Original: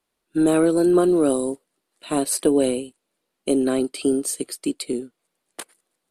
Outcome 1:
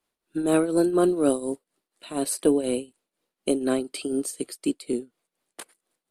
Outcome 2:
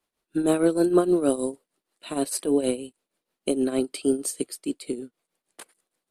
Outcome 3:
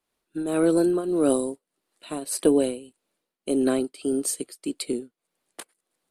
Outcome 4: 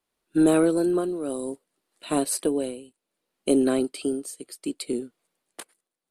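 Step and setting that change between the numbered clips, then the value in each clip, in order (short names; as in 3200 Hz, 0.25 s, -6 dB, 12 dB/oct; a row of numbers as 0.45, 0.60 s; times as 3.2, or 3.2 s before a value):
tremolo, rate: 4.1, 6.4, 1.7, 0.63 Hz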